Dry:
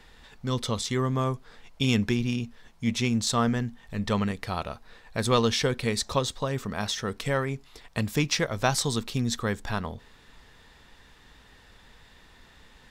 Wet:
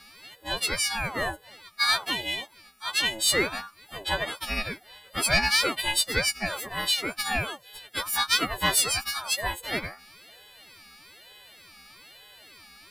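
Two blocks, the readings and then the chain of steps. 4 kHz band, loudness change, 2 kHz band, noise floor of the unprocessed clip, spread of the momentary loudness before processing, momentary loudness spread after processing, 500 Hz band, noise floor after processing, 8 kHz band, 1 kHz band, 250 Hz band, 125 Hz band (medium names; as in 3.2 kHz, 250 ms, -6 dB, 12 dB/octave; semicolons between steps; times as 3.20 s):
+6.5 dB, +2.0 dB, +7.5 dB, -55 dBFS, 10 LU, 14 LU, -5.0 dB, -55 dBFS, +5.5 dB, +0.5 dB, -10.5 dB, -12.0 dB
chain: partials quantised in pitch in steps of 3 st; bass shelf 380 Hz -11 dB; static phaser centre 1.2 kHz, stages 8; saturation -15.5 dBFS, distortion -22 dB; ring modulator with a swept carrier 870 Hz, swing 50%, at 1.1 Hz; trim +6.5 dB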